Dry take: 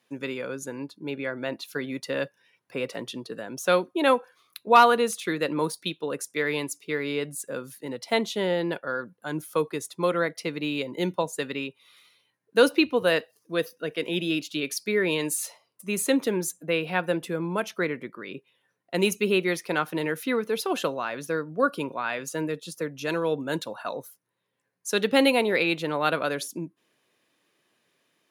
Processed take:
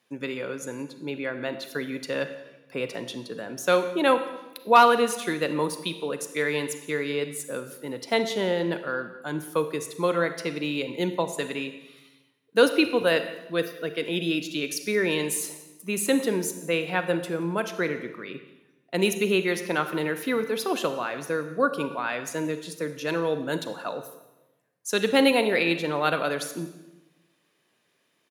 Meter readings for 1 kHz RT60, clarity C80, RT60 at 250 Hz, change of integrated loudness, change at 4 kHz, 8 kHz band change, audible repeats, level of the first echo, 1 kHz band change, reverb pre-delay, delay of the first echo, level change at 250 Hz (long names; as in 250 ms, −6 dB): 0.95 s, 12.0 dB, 1.2 s, +0.5 dB, +0.5 dB, +0.5 dB, 1, −22.0 dB, +0.5 dB, 33 ms, 176 ms, +0.5 dB